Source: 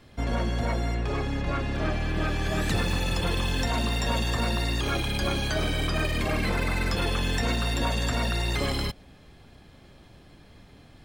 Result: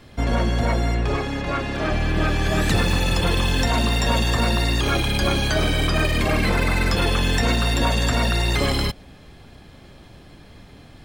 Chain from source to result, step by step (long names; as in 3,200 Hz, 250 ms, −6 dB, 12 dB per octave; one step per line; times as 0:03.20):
0:01.16–0:01.91: low-shelf EQ 160 Hz −8.5 dB
level +6.5 dB